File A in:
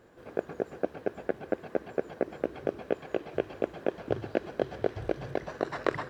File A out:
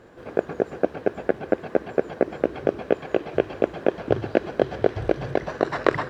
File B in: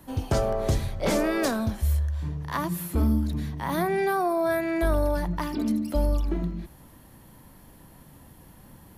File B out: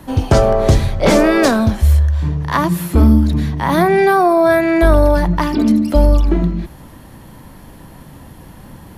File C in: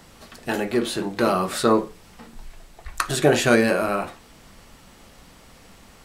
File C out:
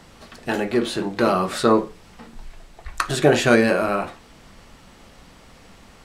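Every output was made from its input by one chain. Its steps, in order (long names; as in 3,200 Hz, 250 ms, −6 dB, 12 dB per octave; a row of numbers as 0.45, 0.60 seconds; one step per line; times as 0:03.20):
high-shelf EQ 10,000 Hz −11.5 dB
normalise the peak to −1.5 dBFS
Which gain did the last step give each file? +8.5, +13.0, +1.5 decibels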